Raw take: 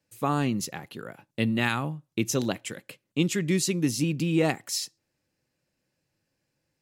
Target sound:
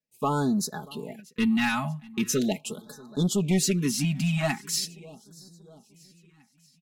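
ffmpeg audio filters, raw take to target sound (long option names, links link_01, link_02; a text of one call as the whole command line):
ffmpeg -i in.wav -filter_complex "[0:a]agate=range=-17dB:threshold=-47dB:ratio=16:detection=peak,aecho=1:1:4.7:0.98,asoftclip=type=tanh:threshold=-16.5dB,asplit=2[link_01][link_02];[link_02]aecho=0:1:635|1270|1905|2540:0.075|0.0397|0.0211|0.0112[link_03];[link_01][link_03]amix=inputs=2:normalize=0,afftfilt=real='re*(1-between(b*sr/1024,400*pow(2600/400,0.5+0.5*sin(2*PI*0.41*pts/sr))/1.41,400*pow(2600/400,0.5+0.5*sin(2*PI*0.41*pts/sr))*1.41))':imag='im*(1-between(b*sr/1024,400*pow(2600/400,0.5+0.5*sin(2*PI*0.41*pts/sr))/1.41,400*pow(2600/400,0.5+0.5*sin(2*PI*0.41*pts/sr))*1.41))':win_size=1024:overlap=0.75" out.wav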